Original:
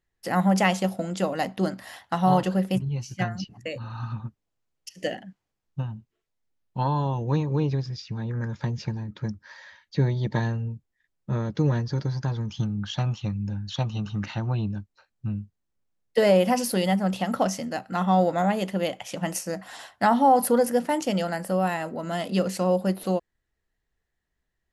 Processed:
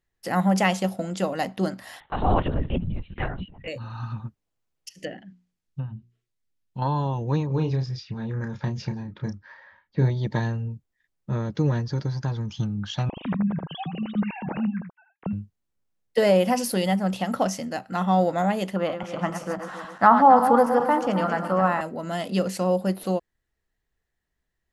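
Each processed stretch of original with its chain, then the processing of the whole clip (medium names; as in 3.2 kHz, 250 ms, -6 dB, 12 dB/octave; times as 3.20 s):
2.00–3.68 s: LPC vocoder at 8 kHz whisper + transient shaper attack -3 dB, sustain +2 dB
4.93–6.82 s: hum notches 60/120/180/240/300/360 Hz + low-pass that closes with the level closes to 1.8 kHz, closed at -26 dBFS + peaking EQ 770 Hz -7.5 dB 1.9 oct
7.47–10.10 s: level-controlled noise filter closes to 1 kHz, open at -24.5 dBFS + doubling 31 ms -7 dB
13.09–15.33 s: formants replaced by sine waves + delay 79 ms -7 dB
18.76–21.81 s: backward echo that repeats 136 ms, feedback 64%, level -8 dB + low-pass 1.7 kHz 6 dB/octave + peaking EQ 1.2 kHz +14.5 dB 0.71 oct
whole clip: none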